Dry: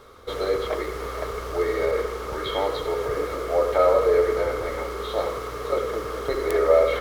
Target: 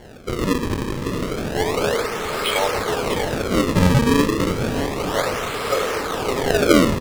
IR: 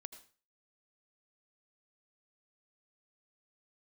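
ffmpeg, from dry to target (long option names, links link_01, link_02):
-af "aemphasis=mode=production:type=riaa,acrusher=samples=35:mix=1:aa=0.000001:lfo=1:lforange=56:lforate=0.31,highshelf=frequency=11000:gain=-7,aecho=1:1:646:0.282,volume=5dB"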